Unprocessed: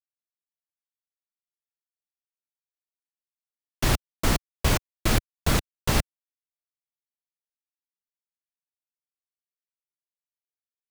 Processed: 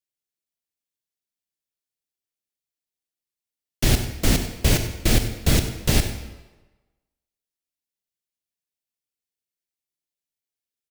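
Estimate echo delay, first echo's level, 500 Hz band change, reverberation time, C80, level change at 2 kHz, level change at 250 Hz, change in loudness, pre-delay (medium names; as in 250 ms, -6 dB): 95 ms, -14.0 dB, +3.0 dB, 1.2 s, 9.0 dB, +1.5 dB, +5.0 dB, +4.0 dB, 25 ms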